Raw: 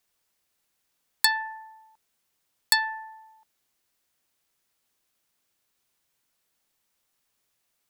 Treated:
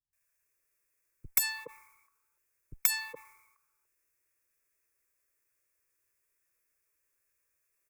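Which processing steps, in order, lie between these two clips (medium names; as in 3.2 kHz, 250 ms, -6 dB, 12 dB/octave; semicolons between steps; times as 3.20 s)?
self-modulated delay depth 0.4 ms; static phaser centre 810 Hz, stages 6; three bands offset in time lows, highs, mids 130/420 ms, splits 180/560 Hz; formant shift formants +4 st; trim -1.5 dB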